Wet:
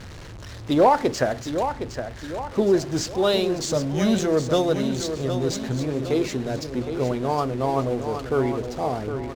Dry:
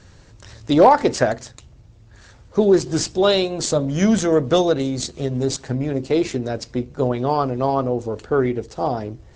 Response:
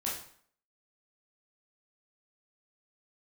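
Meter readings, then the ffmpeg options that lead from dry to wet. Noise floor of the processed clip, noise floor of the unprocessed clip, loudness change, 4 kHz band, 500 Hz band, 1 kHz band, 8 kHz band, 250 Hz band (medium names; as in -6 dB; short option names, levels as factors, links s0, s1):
-38 dBFS, -48 dBFS, -4.0 dB, -3.5 dB, -3.5 dB, -3.5 dB, -4.0 dB, -3.5 dB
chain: -af "aeval=exprs='val(0)+0.5*0.0335*sgn(val(0))':c=same,aecho=1:1:763|1526|2289|3052|3815:0.376|0.177|0.083|0.039|0.0183,adynamicsmooth=sensitivity=8:basefreq=3400,volume=0.562"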